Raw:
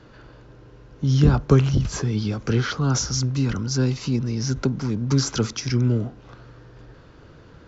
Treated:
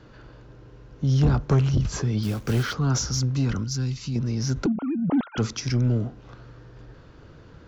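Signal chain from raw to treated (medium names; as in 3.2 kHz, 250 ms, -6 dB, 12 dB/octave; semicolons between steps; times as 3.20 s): 4.66–5.38 s: formants replaced by sine waves; bass shelf 190 Hz +3 dB; 2.23–2.74 s: short-mantissa float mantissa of 2-bit; saturation -11.5 dBFS, distortion -14 dB; 3.64–4.16 s: peaking EQ 620 Hz -13 dB 2.8 oct; trim -2 dB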